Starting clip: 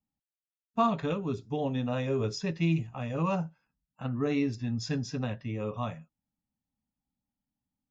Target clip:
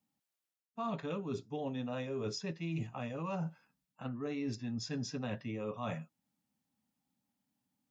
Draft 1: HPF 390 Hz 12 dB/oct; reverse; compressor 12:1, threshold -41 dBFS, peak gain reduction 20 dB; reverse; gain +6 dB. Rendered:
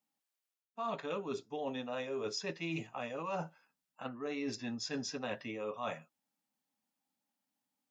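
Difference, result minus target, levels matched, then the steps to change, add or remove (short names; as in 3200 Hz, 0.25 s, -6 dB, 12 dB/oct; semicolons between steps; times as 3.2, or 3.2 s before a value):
125 Hz band -8.5 dB
change: HPF 150 Hz 12 dB/oct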